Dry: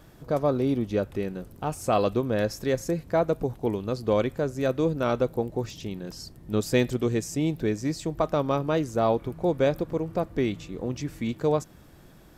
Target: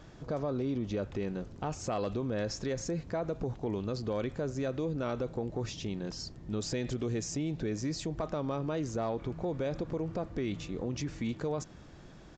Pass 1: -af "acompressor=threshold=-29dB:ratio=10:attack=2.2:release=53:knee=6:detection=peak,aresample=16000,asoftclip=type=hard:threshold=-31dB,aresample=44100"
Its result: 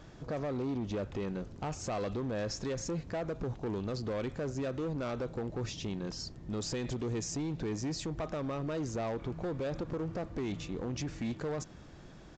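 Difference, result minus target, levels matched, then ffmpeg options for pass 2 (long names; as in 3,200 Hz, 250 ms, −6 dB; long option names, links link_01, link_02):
hard clipping: distortion +29 dB
-af "acompressor=threshold=-29dB:ratio=10:attack=2.2:release=53:knee=6:detection=peak,aresample=16000,asoftclip=type=hard:threshold=-24.5dB,aresample=44100"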